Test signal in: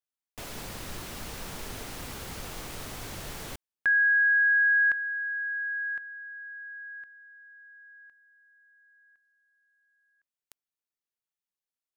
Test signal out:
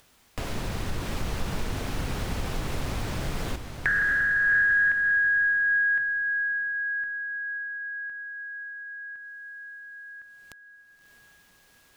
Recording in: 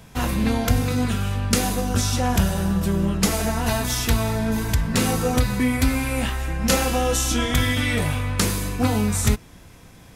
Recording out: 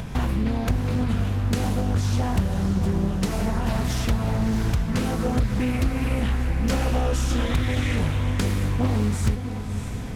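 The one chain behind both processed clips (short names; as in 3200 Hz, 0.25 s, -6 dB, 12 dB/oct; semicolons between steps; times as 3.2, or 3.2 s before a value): upward compressor, threshold -40 dBFS; low shelf 210 Hz +7.5 dB; compressor 3:1, threshold -32 dBFS; high shelf 5100 Hz -8 dB; diffused feedback echo 0.642 s, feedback 46%, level -8.5 dB; Doppler distortion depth 0.54 ms; gain +7 dB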